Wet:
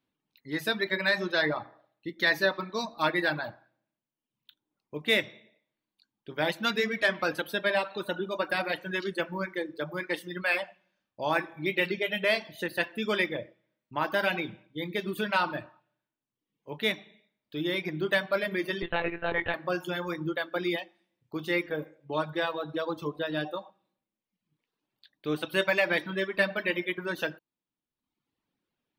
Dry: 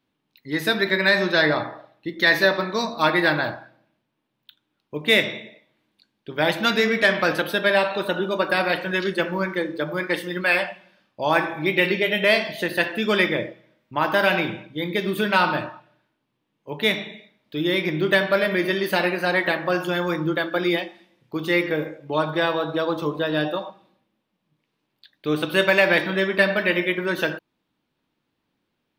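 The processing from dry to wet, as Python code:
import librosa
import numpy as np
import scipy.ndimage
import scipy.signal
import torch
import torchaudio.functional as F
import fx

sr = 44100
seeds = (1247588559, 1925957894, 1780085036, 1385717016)

y = fx.dereverb_blind(x, sr, rt60_s=0.94)
y = fx.lpc_monotone(y, sr, seeds[0], pitch_hz=170.0, order=16, at=(18.82, 19.54))
y = y * librosa.db_to_amplitude(-7.0)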